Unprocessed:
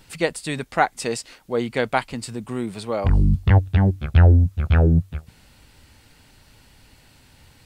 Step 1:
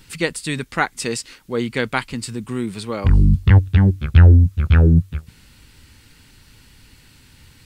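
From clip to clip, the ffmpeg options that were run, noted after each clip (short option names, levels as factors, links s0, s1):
-af "equalizer=f=680:w=1.7:g=-11.5,volume=1.58"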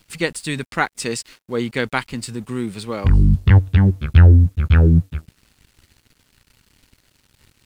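-af "aeval=exprs='sgn(val(0))*max(abs(val(0))-0.00422,0)':c=same"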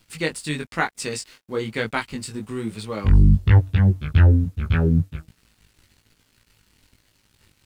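-af "flanger=delay=18:depth=2.1:speed=1.1"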